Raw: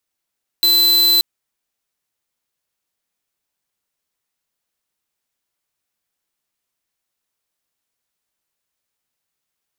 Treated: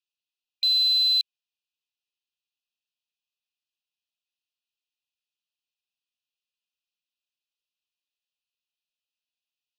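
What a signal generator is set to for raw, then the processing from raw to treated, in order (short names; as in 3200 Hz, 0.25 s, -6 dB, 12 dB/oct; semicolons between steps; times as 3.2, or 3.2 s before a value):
tone square 4040 Hz -13 dBFS 0.58 s
brick-wall FIR high-pass 2400 Hz; air absorption 230 m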